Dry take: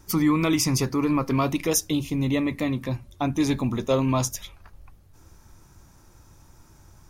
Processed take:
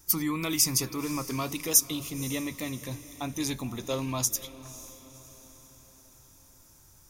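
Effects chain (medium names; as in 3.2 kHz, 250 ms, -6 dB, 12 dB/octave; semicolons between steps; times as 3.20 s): pre-emphasis filter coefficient 0.8; echo that smears into a reverb 529 ms, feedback 50%, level -16 dB; trim +4 dB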